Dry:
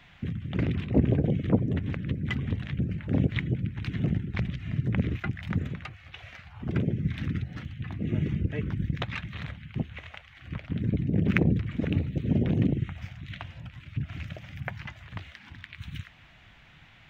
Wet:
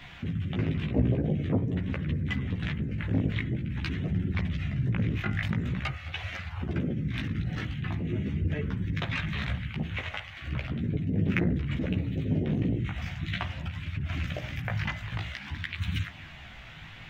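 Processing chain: in parallel at +2 dB: compressor with a negative ratio -38 dBFS, ratio -1; on the sum: de-hum 56.38 Hz, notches 37; chorus voices 2, 0.47 Hz, delay 15 ms, depth 4.2 ms

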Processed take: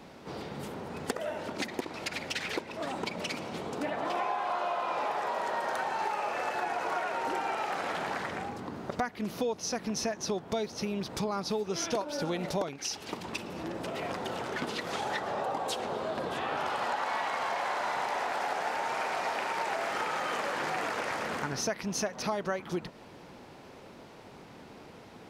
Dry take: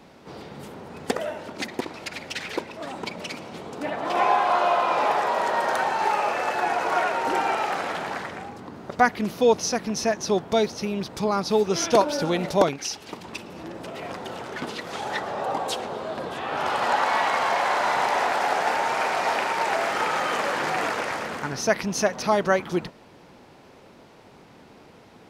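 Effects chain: compression 5:1, threshold -30 dBFS, peak gain reduction 16 dB

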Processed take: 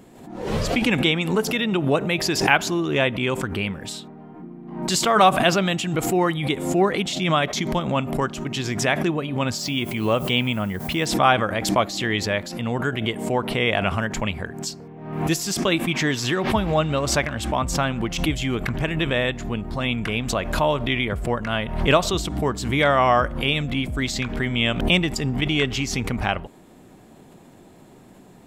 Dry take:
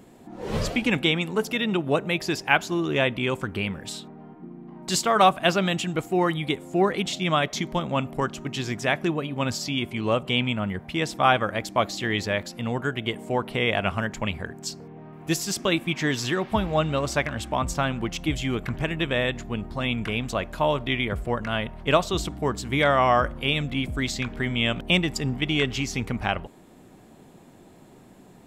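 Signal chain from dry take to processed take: 9.57–11.05 s: added noise violet -53 dBFS; swell ahead of each attack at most 65 dB/s; trim +2 dB

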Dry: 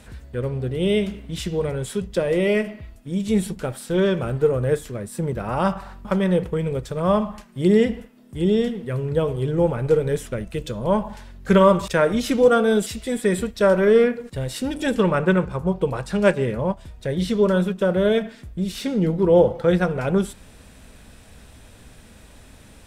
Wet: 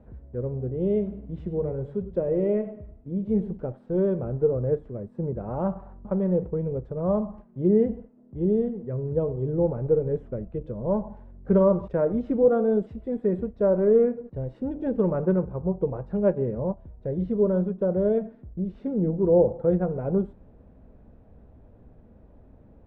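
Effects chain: Chebyshev low-pass 580 Hz, order 2; 1.02–3.57 s: modulated delay 101 ms, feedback 31%, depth 74 cents, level -13.5 dB; trim -3.5 dB

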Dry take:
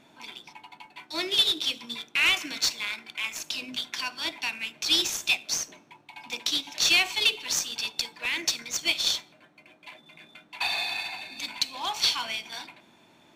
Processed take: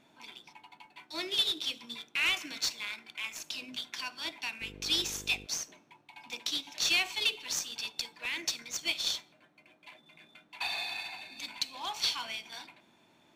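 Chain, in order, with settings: 4.60–5.45 s: mains buzz 50 Hz, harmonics 10, -43 dBFS -2 dB/octave; trim -6.5 dB

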